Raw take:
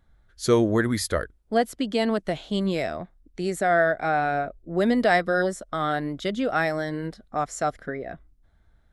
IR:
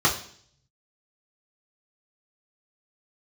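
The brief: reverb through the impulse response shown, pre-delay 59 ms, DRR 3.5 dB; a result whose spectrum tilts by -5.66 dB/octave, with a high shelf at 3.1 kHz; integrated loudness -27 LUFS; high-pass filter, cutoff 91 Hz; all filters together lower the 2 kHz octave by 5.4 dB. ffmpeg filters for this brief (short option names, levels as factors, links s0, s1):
-filter_complex "[0:a]highpass=91,equalizer=f=2000:t=o:g=-6,highshelf=f=3100:g=-5,asplit=2[s0][s1];[1:a]atrim=start_sample=2205,adelay=59[s2];[s1][s2]afir=irnorm=-1:irlink=0,volume=0.1[s3];[s0][s3]amix=inputs=2:normalize=0,volume=0.75"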